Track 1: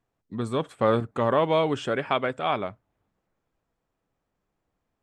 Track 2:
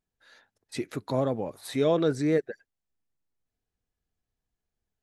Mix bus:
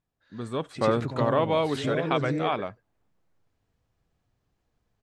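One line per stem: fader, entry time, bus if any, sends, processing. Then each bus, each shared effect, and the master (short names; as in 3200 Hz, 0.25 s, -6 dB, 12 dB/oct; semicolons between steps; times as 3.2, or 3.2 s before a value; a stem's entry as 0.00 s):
-9.0 dB, 0.00 s, no send, no echo send, dry
-0.5 dB, 0.00 s, no send, echo send -4 dB, LPF 5600 Hz 12 dB/oct; bell 120 Hz +8.5 dB 1.2 oct; compressor 3:1, threshold -32 dBFS, peak gain reduction 11 dB; auto duck -11 dB, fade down 0.25 s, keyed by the first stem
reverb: off
echo: feedback echo 92 ms, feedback 15%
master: AGC gain up to 7 dB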